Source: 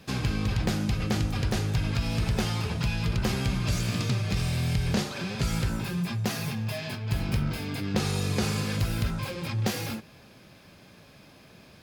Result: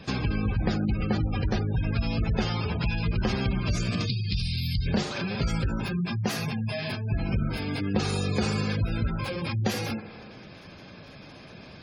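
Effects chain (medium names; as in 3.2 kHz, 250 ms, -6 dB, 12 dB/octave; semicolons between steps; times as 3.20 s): 4.06–4.86 s: FFT filter 100 Hz 0 dB, 240 Hz -7 dB, 360 Hz -8 dB, 520 Hz -16 dB, 2.2 kHz -3 dB, 4.7 kHz +6 dB, 7 kHz -7 dB, 11 kHz +5 dB; tape echo 79 ms, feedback 74%, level -14 dB, low-pass 3.5 kHz; dynamic bell 130 Hz, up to -4 dB, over -39 dBFS, Q 2.6; in parallel at +1 dB: compression, threshold -39 dBFS, peak gain reduction 16 dB; on the sum: spectral gate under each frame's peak -25 dB strong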